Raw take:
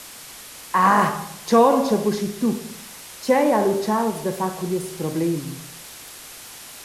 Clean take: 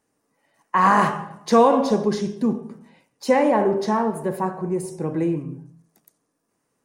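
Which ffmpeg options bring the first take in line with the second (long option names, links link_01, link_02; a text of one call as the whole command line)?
ffmpeg -i in.wav -af "adeclick=threshold=4,afwtdn=0.013" out.wav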